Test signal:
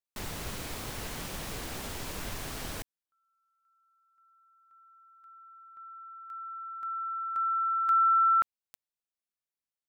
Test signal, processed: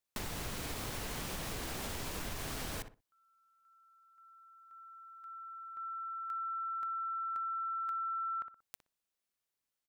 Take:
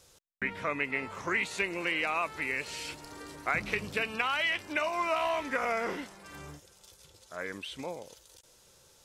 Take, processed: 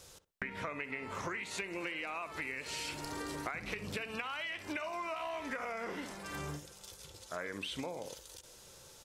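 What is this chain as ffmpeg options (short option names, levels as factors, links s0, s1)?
-filter_complex "[0:a]asplit=2[s0][s1];[s1]adelay=61,lowpass=f=1700:p=1,volume=0.251,asplit=2[s2][s3];[s3]adelay=61,lowpass=f=1700:p=1,volume=0.2,asplit=2[s4][s5];[s5]adelay=61,lowpass=f=1700:p=1,volume=0.2[s6];[s0][s2][s4][s6]amix=inputs=4:normalize=0,acompressor=threshold=0.00891:ratio=12:attack=16:release=158:knee=1:detection=rms,volume=1.68"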